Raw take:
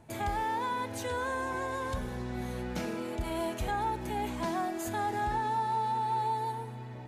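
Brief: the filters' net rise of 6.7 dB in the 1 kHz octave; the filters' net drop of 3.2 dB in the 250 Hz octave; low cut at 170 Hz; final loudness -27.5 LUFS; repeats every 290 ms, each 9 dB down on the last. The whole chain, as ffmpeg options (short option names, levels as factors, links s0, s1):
-af "highpass=170,equalizer=f=250:t=o:g=-4,equalizer=f=1000:t=o:g=8,aecho=1:1:290|580|870|1160:0.355|0.124|0.0435|0.0152"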